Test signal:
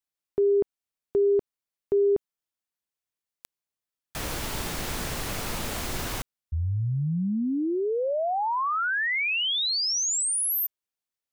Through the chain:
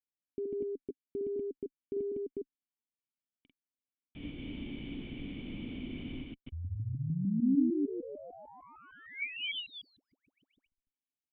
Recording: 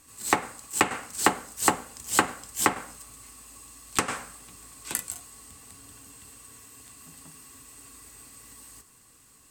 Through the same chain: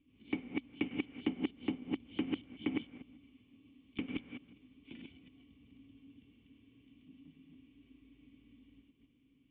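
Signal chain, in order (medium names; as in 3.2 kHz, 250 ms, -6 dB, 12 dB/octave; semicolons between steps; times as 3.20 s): chunks repeated in reverse 151 ms, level -1 dB; Chebyshev shaper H 6 -41 dB, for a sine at -4 dBFS; cascade formant filter i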